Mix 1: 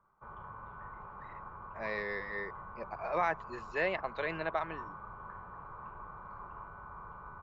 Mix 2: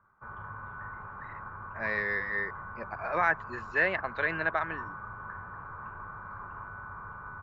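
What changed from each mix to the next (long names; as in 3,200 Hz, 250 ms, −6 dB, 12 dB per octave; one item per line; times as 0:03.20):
master: add graphic EQ with 15 bands 100 Hz +10 dB, 250 Hz +5 dB, 1,600 Hz +12 dB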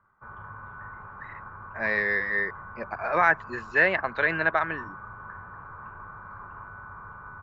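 speech +5.5 dB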